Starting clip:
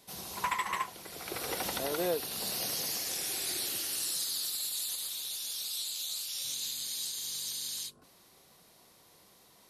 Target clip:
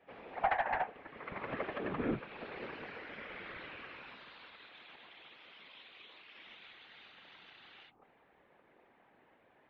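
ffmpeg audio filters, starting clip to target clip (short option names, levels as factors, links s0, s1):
-af "highpass=f=520:t=q:w=0.5412,highpass=f=520:t=q:w=1.307,lowpass=f=2600:t=q:w=0.5176,lowpass=f=2600:t=q:w=0.7071,lowpass=f=2600:t=q:w=1.932,afreqshift=-250,aeval=exprs='0.106*(cos(1*acos(clip(val(0)/0.106,-1,1)))-cos(1*PI/2))+0.0188*(cos(2*acos(clip(val(0)/0.106,-1,1)))-cos(2*PI/2))+0.00119*(cos(4*acos(clip(val(0)/0.106,-1,1)))-cos(4*PI/2))':c=same,afftfilt=real='hypot(re,im)*cos(2*PI*random(0))':imag='hypot(re,im)*sin(2*PI*random(1))':win_size=512:overlap=0.75,volume=2.11"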